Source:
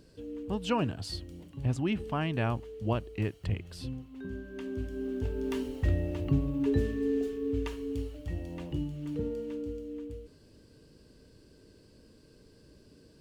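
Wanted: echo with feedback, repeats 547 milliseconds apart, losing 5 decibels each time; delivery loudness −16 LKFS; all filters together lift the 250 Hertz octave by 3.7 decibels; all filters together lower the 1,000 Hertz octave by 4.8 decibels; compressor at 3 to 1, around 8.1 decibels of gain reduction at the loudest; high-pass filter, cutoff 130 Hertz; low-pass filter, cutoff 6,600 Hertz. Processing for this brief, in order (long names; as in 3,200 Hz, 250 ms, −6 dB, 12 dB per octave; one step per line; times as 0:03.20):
high-pass filter 130 Hz
low-pass filter 6,600 Hz
parametric band 250 Hz +5 dB
parametric band 1,000 Hz −6.5 dB
downward compressor 3 to 1, threshold −32 dBFS
repeating echo 547 ms, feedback 56%, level −5 dB
level +19 dB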